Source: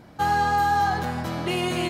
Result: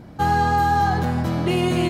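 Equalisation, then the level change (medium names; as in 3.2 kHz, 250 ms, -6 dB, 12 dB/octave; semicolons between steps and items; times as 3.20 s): bass shelf 440 Hz +9.5 dB; 0.0 dB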